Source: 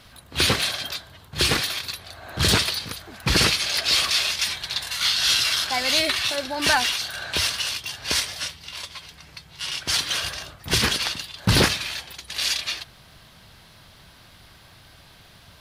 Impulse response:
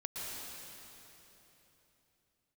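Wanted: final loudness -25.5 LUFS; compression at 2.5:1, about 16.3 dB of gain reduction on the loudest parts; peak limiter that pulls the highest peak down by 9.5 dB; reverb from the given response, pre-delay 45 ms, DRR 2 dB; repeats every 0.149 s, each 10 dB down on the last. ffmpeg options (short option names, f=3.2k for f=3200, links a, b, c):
-filter_complex "[0:a]acompressor=threshold=-40dB:ratio=2.5,alimiter=level_in=5dB:limit=-24dB:level=0:latency=1,volume=-5dB,aecho=1:1:149|298|447|596:0.316|0.101|0.0324|0.0104,asplit=2[a][b];[1:a]atrim=start_sample=2205,adelay=45[c];[b][c]afir=irnorm=-1:irlink=0,volume=-3.5dB[d];[a][d]amix=inputs=2:normalize=0,volume=10.5dB"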